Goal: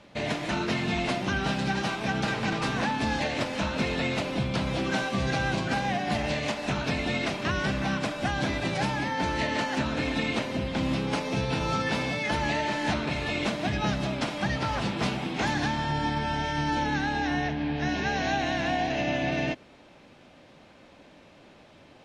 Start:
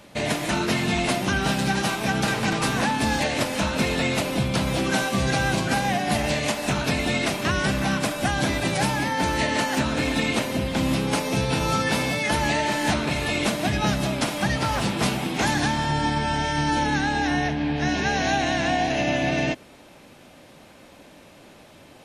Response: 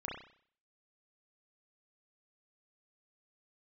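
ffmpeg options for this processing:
-af "lowpass=5.1k,volume=-4.5dB"

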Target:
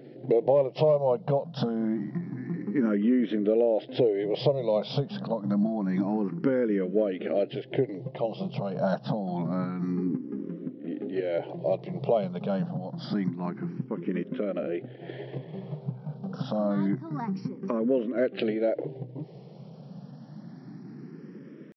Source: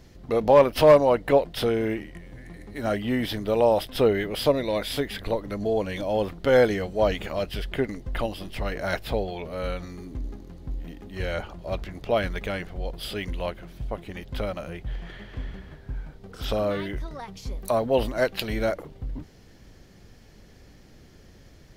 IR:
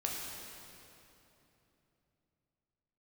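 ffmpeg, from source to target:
-filter_complex "[0:a]tiltshelf=f=970:g=10,atempo=1,acompressor=threshold=-24dB:ratio=10,afftfilt=real='re*between(b*sr/4096,120,5800)':imag='im*between(b*sr/4096,120,5800)':win_size=4096:overlap=0.75,asplit=2[a][b];[b]afreqshift=0.27[c];[a][c]amix=inputs=2:normalize=1,volume=5.5dB"

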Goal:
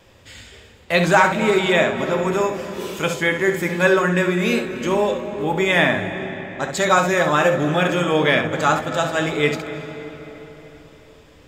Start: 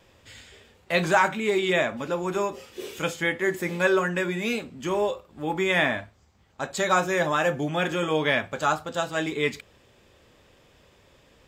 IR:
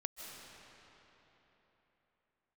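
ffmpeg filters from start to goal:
-filter_complex "[0:a]asplit=2[a][b];[1:a]atrim=start_sample=2205,lowshelf=f=270:g=10,adelay=67[c];[b][c]afir=irnorm=-1:irlink=0,volume=-6.5dB[d];[a][d]amix=inputs=2:normalize=0,volume=5.5dB"

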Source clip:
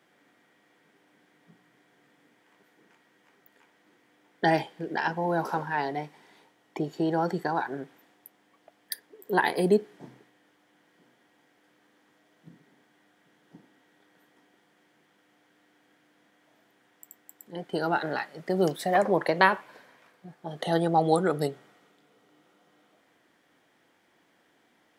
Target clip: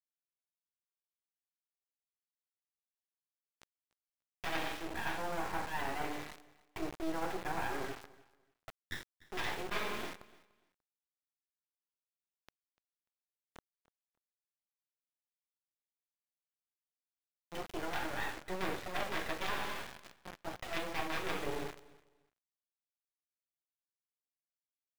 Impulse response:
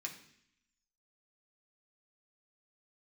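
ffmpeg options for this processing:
-filter_complex "[0:a]aresample=8000,aeval=exprs='(mod(5.31*val(0)+1,2)-1)/5.31':c=same,aresample=44100,highpass=440[a];[1:a]atrim=start_sample=2205,afade=t=out:st=0.44:d=0.01,atrim=end_sample=19845[b];[a][b]afir=irnorm=-1:irlink=0,areverse,acompressor=threshold=-46dB:ratio=5,areverse,equalizer=f=800:t=o:w=0.22:g=2,acrusher=bits=6:dc=4:mix=0:aa=0.000001,highshelf=f=3.1k:g=-7,aecho=1:1:294|588:0.0841|0.0177,volume=13.5dB"

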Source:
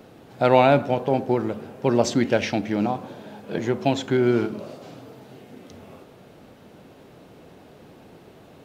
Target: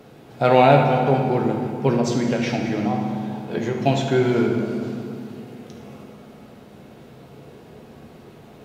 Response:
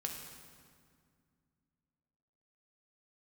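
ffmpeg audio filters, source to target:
-filter_complex "[0:a]asettb=1/sr,asplit=3[a][b][c];[a]atrim=end=1.944[d];[b]atrim=start=1.94:end=3.8,asetpts=PTS-STARTPTS,afade=t=in:d=0.004:c=qsin,afade=t=out:st=1.856:d=0.004:c=qsin,acompressor=threshold=-21dB:ratio=6[e];[c]atrim=start=3.796[f];[d][e]acrossfade=d=0.004:c1=hsin:c2=qsin[g];[g][f]acrossfade=d=0.004:c1=qsin:c2=hsin[h];[1:a]atrim=start_sample=2205,asetrate=38808,aresample=44100[i];[h][i]afir=irnorm=-1:irlink=0,volume=2dB"

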